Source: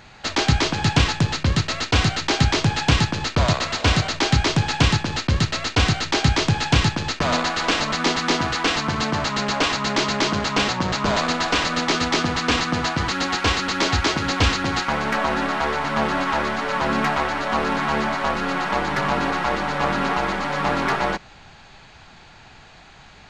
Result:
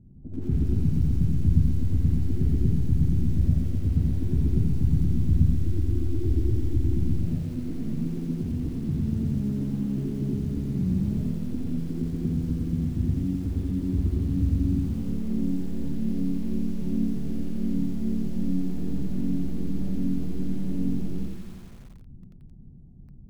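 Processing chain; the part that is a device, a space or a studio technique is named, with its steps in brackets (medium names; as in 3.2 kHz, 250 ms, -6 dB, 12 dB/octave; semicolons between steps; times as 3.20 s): 5.58–6.94 s: FFT filter 110 Hz 0 dB, 170 Hz -22 dB, 320 Hz +13 dB, 480 Hz -2 dB, 720 Hz -2 dB, 1.4 kHz -4 dB, 2 kHz -26 dB, 2.9 kHz +8 dB, 7.6 kHz -12 dB, 12 kHz +12 dB; thinning echo 106 ms, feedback 47%, high-pass 260 Hz, level -16 dB; club heard from the street (peak limiter -15 dBFS, peak gain reduction 11.5 dB; low-pass 250 Hz 24 dB/octave; reverberation RT60 0.80 s, pre-delay 64 ms, DRR -4.5 dB); bit-crushed delay 87 ms, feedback 80%, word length 7-bit, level -14.5 dB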